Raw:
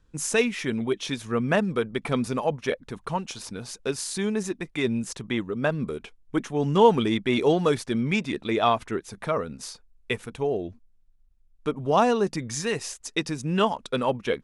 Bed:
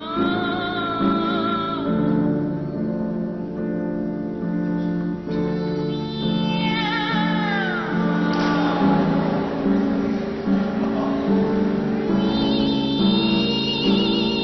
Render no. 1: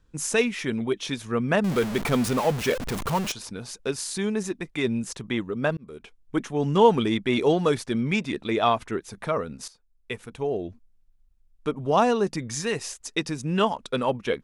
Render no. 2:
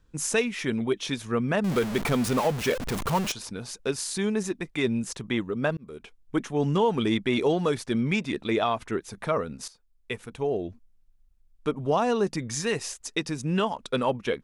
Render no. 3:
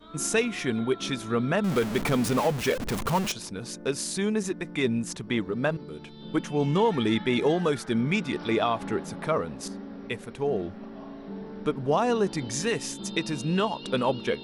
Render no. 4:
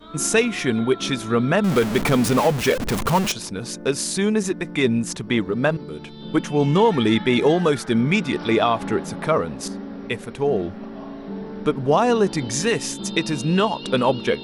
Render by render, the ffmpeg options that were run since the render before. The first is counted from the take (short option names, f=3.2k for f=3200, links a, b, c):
-filter_complex "[0:a]asettb=1/sr,asplit=3[a][b][c];[a]atrim=end=1.644[d];[b]atrim=start=1.64:end=3.32,asetpts=PTS-STARTPTS,afade=t=in:d=0.004:c=qsin,afade=t=out:st=1.676:d=0.004:c=qsin,aeval=exprs='val(0)+0.5*0.0501*sgn(val(0))':c=same[e];[c]atrim=start=3.316[f];[d][e]acrossfade=d=0.004:c1=hsin:c2=qsin[g];[g][f]acrossfade=d=0.004:c1=qsin:c2=hsin,asplit=3[h][i][j];[h]atrim=end=5.77,asetpts=PTS-STARTPTS,afade=t=out:st=5.766:d=0.004:c=hsin[k];[i]atrim=start=5.77:end=9.68,asetpts=PTS-STARTPTS,afade=t=in:d=0.67:c=qsin,afade=t=out:st=3.906:d=0.004:c=hsin:silence=0.16788[l];[j]atrim=start=9.68,asetpts=PTS-STARTPTS,afade=t=in:d=0.95:silence=0.16788[m];[k][l][m]concat=n=3:v=0:a=1"
-af "alimiter=limit=-14dB:level=0:latency=1:release=223"
-filter_complex "[1:a]volume=-19.5dB[a];[0:a][a]amix=inputs=2:normalize=0"
-af "volume=6.5dB"